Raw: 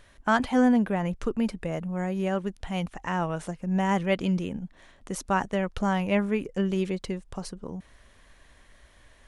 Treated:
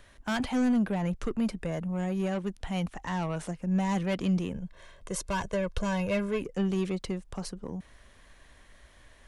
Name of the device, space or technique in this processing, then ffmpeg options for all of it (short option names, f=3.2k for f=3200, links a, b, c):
one-band saturation: -filter_complex "[0:a]acrossover=split=210|3200[a][b][c];[b]asoftclip=type=tanh:threshold=-28.5dB[d];[a][d][c]amix=inputs=3:normalize=0,asettb=1/sr,asplit=3[e][f][g];[e]atrim=end=4.524[h];[f]atrim=start=4.52:end=6.42,asetpts=PTS-STARTPTS,afade=t=in:d=0.004:c=qsin,afade=t=out:st=1.896:d=0.004:c=qsin,aecho=1:1:1.9:0.7,atrim=end_sample=83790[i];[g]atrim=start=6.416[j];[h][i]acrossfade=d=0.004:c1=hsin:c2=qsin[k];[k][j]acrossfade=d=0.004:c1=qsin:c2=hsin"